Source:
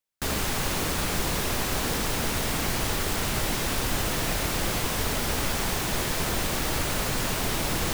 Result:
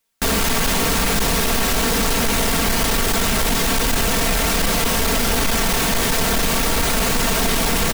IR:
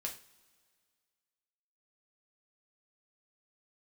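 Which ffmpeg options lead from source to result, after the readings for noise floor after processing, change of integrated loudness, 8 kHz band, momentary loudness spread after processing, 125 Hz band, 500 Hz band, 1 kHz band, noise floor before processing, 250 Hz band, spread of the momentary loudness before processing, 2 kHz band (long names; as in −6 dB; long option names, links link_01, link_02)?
−19 dBFS, +8.5 dB, +9.0 dB, 0 LU, +5.5 dB, +9.0 dB, +8.5 dB, −29 dBFS, +9.0 dB, 0 LU, +8.5 dB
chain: -filter_complex "[0:a]aecho=1:1:4.4:0.59,asplit=2[link_01][link_02];[link_02]alimiter=limit=-22dB:level=0:latency=1,volume=1dB[link_03];[link_01][link_03]amix=inputs=2:normalize=0,asoftclip=type=tanh:threshold=-20.5dB,volume=7dB"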